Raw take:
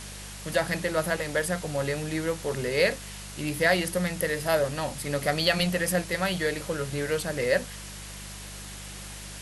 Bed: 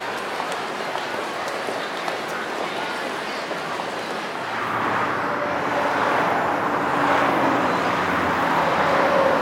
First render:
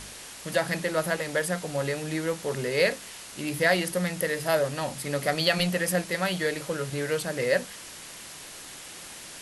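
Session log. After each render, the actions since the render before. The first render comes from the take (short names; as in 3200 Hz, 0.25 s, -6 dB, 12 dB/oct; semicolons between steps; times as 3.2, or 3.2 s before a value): de-hum 50 Hz, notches 4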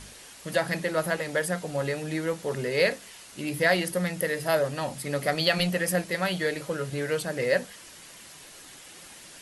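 denoiser 6 dB, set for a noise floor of -43 dBFS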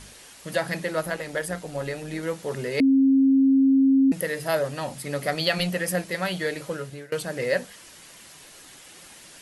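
1.01–2.23 AM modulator 120 Hz, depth 25%; 2.8–4.12 bleep 269 Hz -14.5 dBFS; 6.72–7.12 fade out linear, to -23 dB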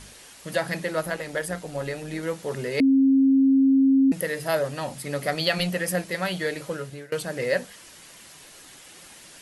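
nothing audible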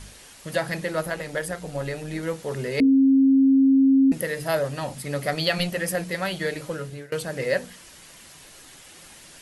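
low shelf 120 Hz +8 dB; notches 60/120/180/240/300/360/420/480 Hz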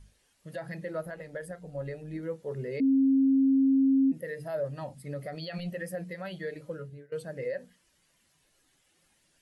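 limiter -19.5 dBFS, peak gain reduction 9.5 dB; spectral expander 1.5:1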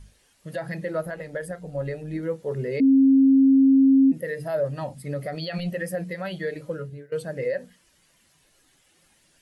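gain +7 dB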